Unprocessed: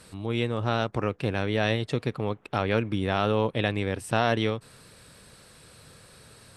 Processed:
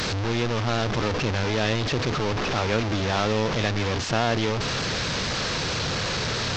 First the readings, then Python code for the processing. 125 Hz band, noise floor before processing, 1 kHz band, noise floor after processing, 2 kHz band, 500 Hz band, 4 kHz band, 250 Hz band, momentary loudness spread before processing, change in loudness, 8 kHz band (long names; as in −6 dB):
+4.0 dB, −54 dBFS, +3.5 dB, −27 dBFS, +5.5 dB, +1.5 dB, +9.5 dB, +2.0 dB, 5 LU, +2.5 dB, +14.0 dB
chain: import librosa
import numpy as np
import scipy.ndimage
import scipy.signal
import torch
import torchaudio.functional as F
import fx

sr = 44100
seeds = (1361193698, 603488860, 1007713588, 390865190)

y = fx.delta_mod(x, sr, bps=32000, step_db=-20.0)